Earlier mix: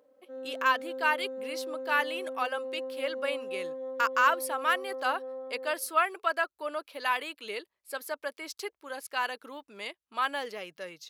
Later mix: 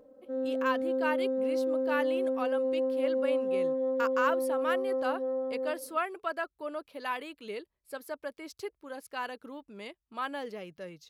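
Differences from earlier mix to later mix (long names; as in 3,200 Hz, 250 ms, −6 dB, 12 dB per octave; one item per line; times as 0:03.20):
speech −8.5 dB
master: remove high-pass filter 1,100 Hz 6 dB per octave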